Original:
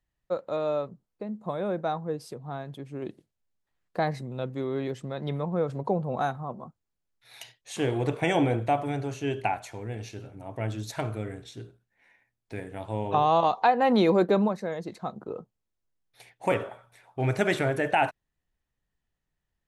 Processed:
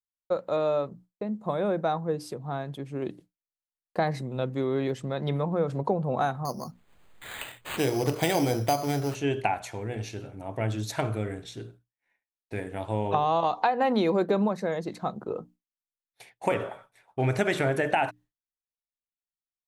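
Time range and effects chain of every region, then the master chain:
6.45–9.15 s: careless resampling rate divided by 8×, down none, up hold + upward compressor, threshold -33 dBFS
whole clip: compression, threshold -24 dBFS; hum notches 60/120/180/240/300 Hz; expander -50 dBFS; trim +3.5 dB

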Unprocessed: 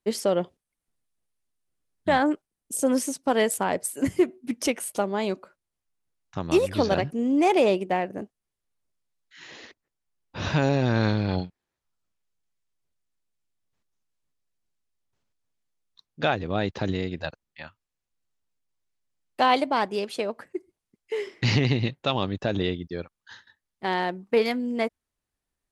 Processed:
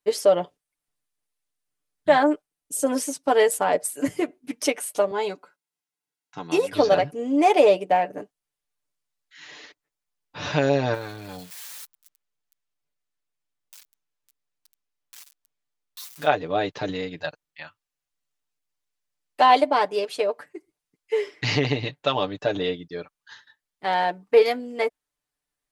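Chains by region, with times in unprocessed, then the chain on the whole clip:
5.11–6.73 s: high-pass 160 Hz + comb of notches 600 Hz
10.94–16.27 s: zero-crossing glitches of -26.5 dBFS + treble shelf 4.6 kHz -6 dB + compression 2:1, threshold -33 dBFS
whole clip: bass shelf 400 Hz -9 dB; comb 6.8 ms, depth 69%; dynamic bell 530 Hz, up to +7 dB, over -36 dBFS, Q 0.95

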